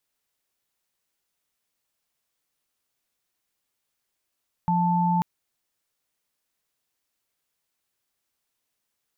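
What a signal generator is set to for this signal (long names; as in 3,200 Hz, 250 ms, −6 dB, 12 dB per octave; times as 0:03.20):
held notes F3/A5 sine, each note −22 dBFS 0.54 s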